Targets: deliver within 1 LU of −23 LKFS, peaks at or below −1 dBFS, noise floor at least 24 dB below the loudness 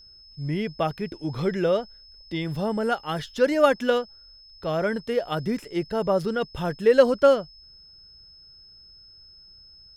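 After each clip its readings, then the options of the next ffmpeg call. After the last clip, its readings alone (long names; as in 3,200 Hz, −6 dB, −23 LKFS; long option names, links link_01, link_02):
interfering tone 5,200 Hz; level of the tone −48 dBFS; integrated loudness −24.5 LKFS; sample peak −4.0 dBFS; target loudness −23.0 LKFS
→ -af "bandreject=frequency=5200:width=30"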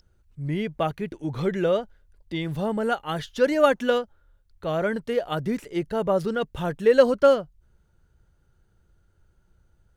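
interfering tone none found; integrated loudness −24.5 LKFS; sample peak −4.0 dBFS; target loudness −23.0 LKFS
→ -af "volume=1.5dB"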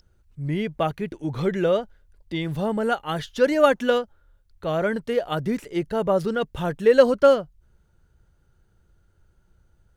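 integrated loudness −23.0 LKFS; sample peak −2.5 dBFS; background noise floor −63 dBFS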